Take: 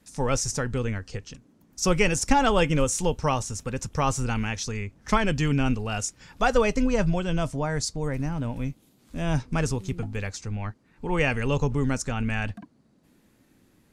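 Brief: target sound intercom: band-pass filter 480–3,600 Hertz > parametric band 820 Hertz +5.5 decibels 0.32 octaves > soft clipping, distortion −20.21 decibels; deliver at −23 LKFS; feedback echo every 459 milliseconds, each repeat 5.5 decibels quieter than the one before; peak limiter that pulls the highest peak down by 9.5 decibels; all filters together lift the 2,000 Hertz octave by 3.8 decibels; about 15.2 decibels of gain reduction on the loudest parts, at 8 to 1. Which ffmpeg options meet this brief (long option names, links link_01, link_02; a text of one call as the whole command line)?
ffmpeg -i in.wav -af "equalizer=frequency=2000:width_type=o:gain=5.5,acompressor=threshold=-31dB:ratio=8,alimiter=level_in=4dB:limit=-24dB:level=0:latency=1,volume=-4dB,highpass=480,lowpass=3600,equalizer=frequency=820:width_type=o:width=0.32:gain=5.5,aecho=1:1:459|918|1377|1836|2295|2754|3213:0.531|0.281|0.149|0.079|0.0419|0.0222|0.0118,asoftclip=threshold=-29.5dB,volume=19.5dB" out.wav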